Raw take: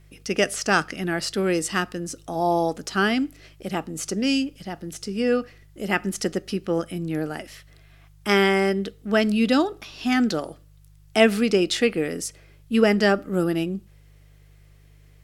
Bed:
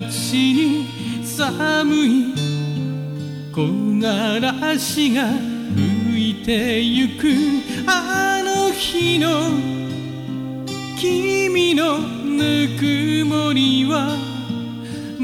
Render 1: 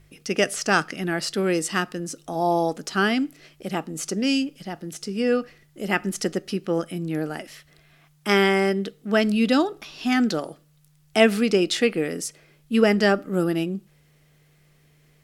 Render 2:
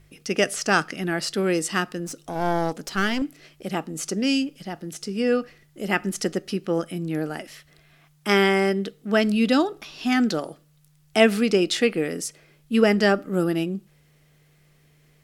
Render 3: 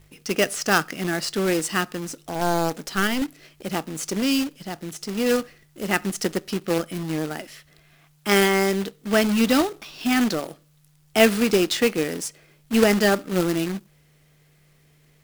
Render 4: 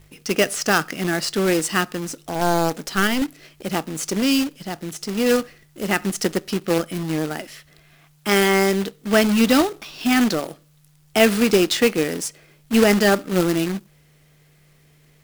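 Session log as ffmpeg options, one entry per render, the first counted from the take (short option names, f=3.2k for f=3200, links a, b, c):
-af "bandreject=f=50:t=h:w=4,bandreject=f=100:t=h:w=4"
-filter_complex "[0:a]asettb=1/sr,asplit=3[a][b][c];[a]atrim=end=2.064[d];[b]atrim=start=2.06:end=3.22,asetpts=PTS-STARTPTS,afade=t=in:d=0.004:c=qsin,afade=t=out:st=1.156:d=0.004:c=qsin,aeval=exprs='clip(val(0),-1,0.0224)':c=same[e];[c]atrim=start=3.216[f];[d][e]acrossfade=d=0.004:c1=hsin:c2=qsin[g];[g][f]acrossfade=d=0.004:c1=qsin:c2=hsin"
-af "acrusher=bits=2:mode=log:mix=0:aa=0.000001"
-af "volume=3dB,alimiter=limit=-3dB:level=0:latency=1"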